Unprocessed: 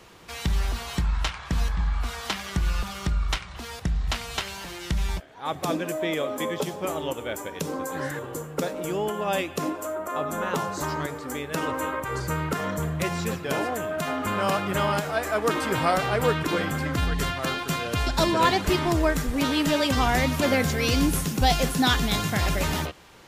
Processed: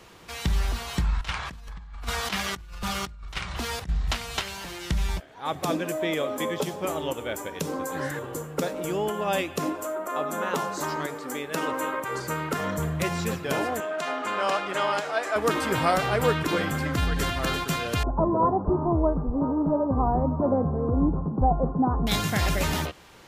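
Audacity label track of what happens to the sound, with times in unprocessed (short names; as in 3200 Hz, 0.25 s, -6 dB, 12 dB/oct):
1.210000	3.890000	negative-ratio compressor -31 dBFS, ratio -0.5
9.840000	12.540000	HPF 190 Hz
13.800000	15.360000	BPF 380–7000 Hz
16.820000	17.300000	echo throw 0.34 s, feedback 15%, level -8 dB
18.030000	22.070000	steep low-pass 1100 Hz 48 dB/oct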